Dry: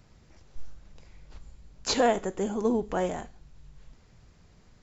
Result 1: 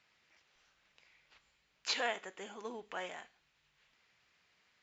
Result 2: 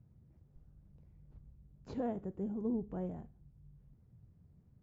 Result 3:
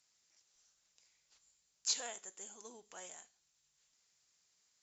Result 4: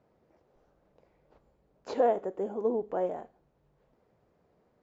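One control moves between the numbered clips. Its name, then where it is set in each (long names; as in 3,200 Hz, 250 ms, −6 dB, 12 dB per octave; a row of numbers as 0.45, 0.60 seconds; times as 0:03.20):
resonant band-pass, frequency: 2,500, 120, 7,900, 530 Hertz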